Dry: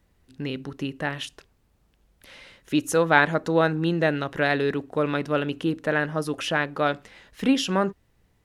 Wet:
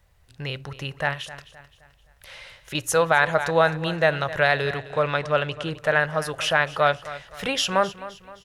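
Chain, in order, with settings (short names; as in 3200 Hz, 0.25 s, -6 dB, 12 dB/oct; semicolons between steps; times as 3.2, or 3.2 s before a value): EQ curve 130 Hz 0 dB, 260 Hz -19 dB, 580 Hz 0 dB; 1.13–2.75 compressor 5:1, threshold -37 dBFS, peak gain reduction 7.5 dB; 4.78–5.73 LPF 8800 Hz 24 dB/oct; feedback echo 0.26 s, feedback 42%, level -16 dB; maximiser +9 dB; gain -4.5 dB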